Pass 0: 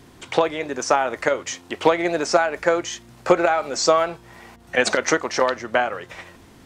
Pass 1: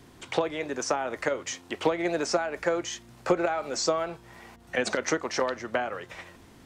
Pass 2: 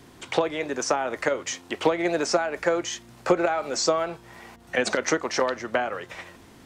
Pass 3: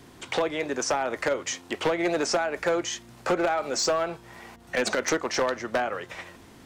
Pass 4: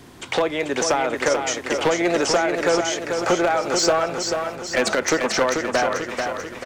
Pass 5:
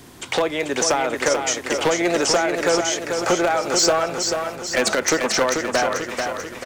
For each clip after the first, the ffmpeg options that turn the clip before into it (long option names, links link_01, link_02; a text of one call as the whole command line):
ffmpeg -i in.wav -filter_complex "[0:a]acrossover=split=430[link_01][link_02];[link_02]acompressor=threshold=-22dB:ratio=4[link_03];[link_01][link_03]amix=inputs=2:normalize=0,volume=-4.5dB" out.wav
ffmpeg -i in.wav -af "lowshelf=frequency=110:gain=-4.5,volume=3.5dB" out.wav
ffmpeg -i in.wav -af "asoftclip=type=hard:threshold=-19dB" out.wav
ffmpeg -i in.wav -af "aecho=1:1:439|878|1317|1756|2195|2634|3073:0.531|0.276|0.144|0.0746|0.0388|0.0202|0.0105,volume=5dB" out.wav
ffmpeg -i in.wav -af "highshelf=frequency=6200:gain=8" out.wav